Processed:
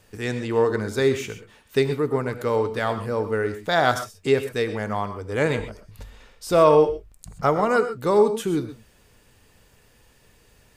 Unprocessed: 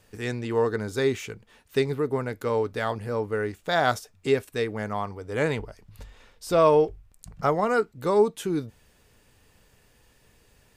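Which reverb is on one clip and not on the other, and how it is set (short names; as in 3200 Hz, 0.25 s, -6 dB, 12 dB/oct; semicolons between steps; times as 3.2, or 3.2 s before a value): non-linear reverb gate 0.15 s rising, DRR 10 dB; gain +3 dB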